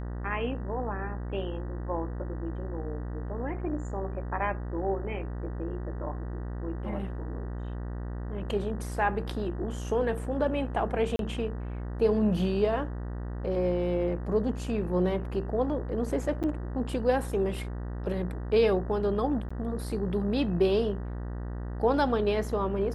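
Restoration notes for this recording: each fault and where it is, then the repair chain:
mains buzz 60 Hz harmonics 32 −35 dBFS
0:11.16–0:11.19: drop-out 32 ms
0:16.43–0:16.44: drop-out 7.8 ms
0:19.49–0:19.50: drop-out 15 ms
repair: hum removal 60 Hz, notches 32
repair the gap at 0:11.16, 32 ms
repair the gap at 0:16.43, 7.8 ms
repair the gap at 0:19.49, 15 ms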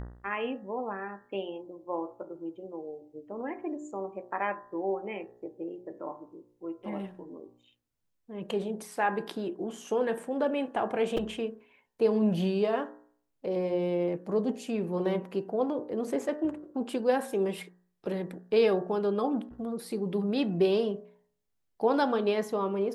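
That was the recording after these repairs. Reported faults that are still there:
none of them is left

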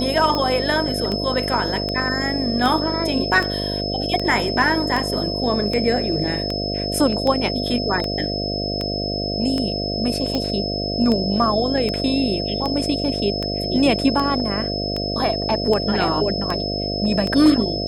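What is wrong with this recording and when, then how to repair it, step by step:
mains buzz 50 Hz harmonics 14 −26 dBFS
scratch tick 78 rpm −11 dBFS
whistle 5,200 Hz −26 dBFS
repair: click removal
hum removal 50 Hz, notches 14
notch filter 5,200 Hz, Q 30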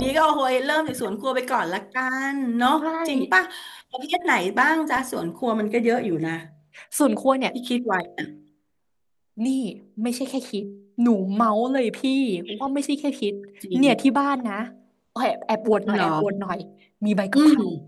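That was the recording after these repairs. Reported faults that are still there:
none of them is left

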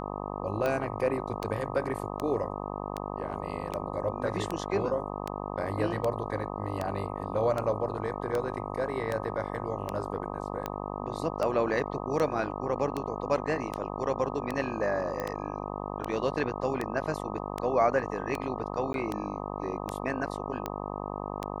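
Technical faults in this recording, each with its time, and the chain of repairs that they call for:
mains buzz 50 Hz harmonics 25 −36 dBFS
scratch tick 78 rpm −17 dBFS
0:15.20: click −19 dBFS
0:18.93–0:18.94: drop-out 12 ms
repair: click removal
hum removal 50 Hz, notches 25
repair the gap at 0:18.93, 12 ms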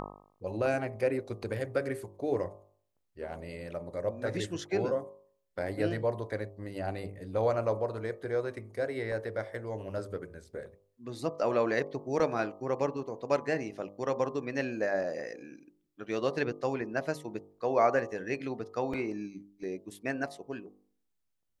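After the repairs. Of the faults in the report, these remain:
none of them is left

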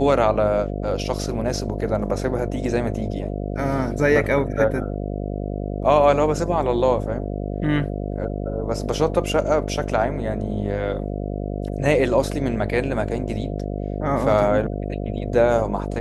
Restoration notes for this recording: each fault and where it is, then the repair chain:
mains buzz 50 Hz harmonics 14 −27 dBFS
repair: hum removal 50 Hz, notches 14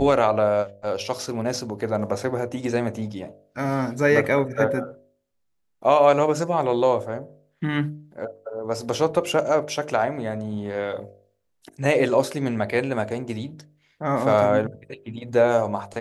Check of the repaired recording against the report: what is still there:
none of them is left

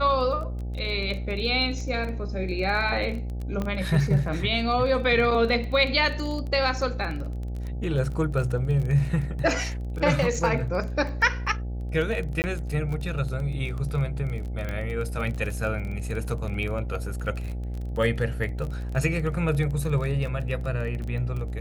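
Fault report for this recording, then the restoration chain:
mains buzz 60 Hz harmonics 14 −31 dBFS
surface crackle 23 per second −31 dBFS
0:03.62: click −17 dBFS
0:12.42–0:12.44: drop-out 19 ms
0:14.69: click −19 dBFS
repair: click removal
hum removal 60 Hz, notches 14
repair the gap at 0:12.42, 19 ms

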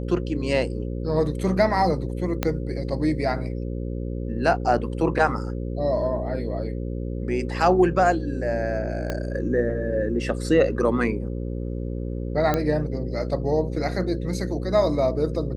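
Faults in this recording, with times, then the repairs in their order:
mains buzz 60 Hz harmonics 9 −29 dBFS
0:02.43: click −8 dBFS
0:09.10: click −13 dBFS
0:12.54: click −9 dBFS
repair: click removal
hum removal 60 Hz, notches 9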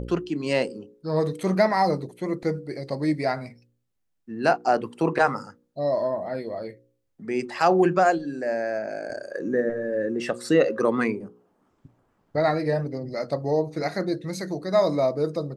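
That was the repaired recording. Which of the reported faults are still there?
0:02.43: click
0:09.10: click

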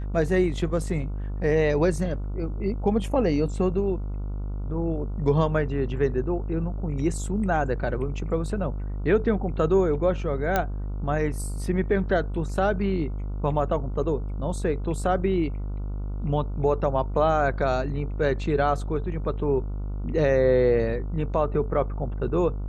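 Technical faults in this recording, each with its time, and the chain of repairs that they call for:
mains buzz 50 Hz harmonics 29 −30 dBFS
0:10.56: click −9 dBFS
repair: click removal
hum removal 50 Hz, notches 29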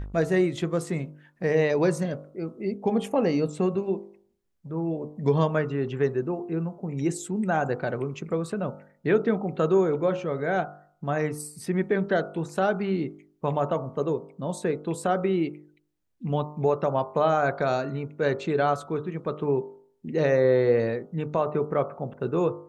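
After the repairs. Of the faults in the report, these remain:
none of them is left

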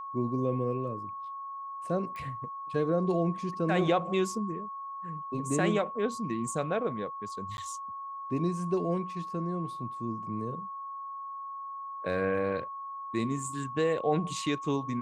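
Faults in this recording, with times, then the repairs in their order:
whistle 1,100 Hz −37 dBFS
0:02.16: click −29 dBFS
0:07.57–0:07.58: drop-out 11 ms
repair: click removal
notch filter 1,100 Hz, Q 30
repair the gap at 0:07.57, 11 ms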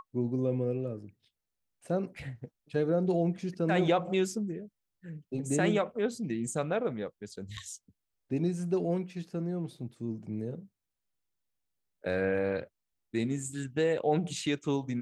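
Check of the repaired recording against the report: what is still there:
none of them is left

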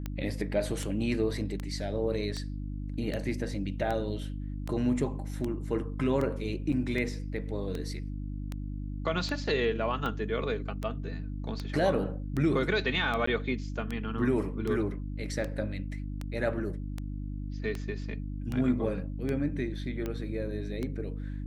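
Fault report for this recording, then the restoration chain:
mains hum 50 Hz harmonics 6 −36 dBFS
scratch tick 78 rpm −21 dBFS
0:06.72–0:06.73: drop-out 5.9 ms
0:13.26–0:13.27: drop-out 14 ms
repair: click removal
hum removal 50 Hz, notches 6
repair the gap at 0:06.72, 5.9 ms
repair the gap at 0:13.26, 14 ms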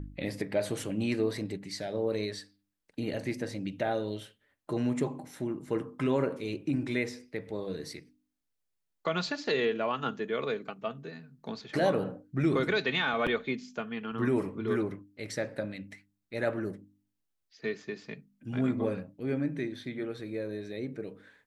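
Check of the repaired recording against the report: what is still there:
none of them is left

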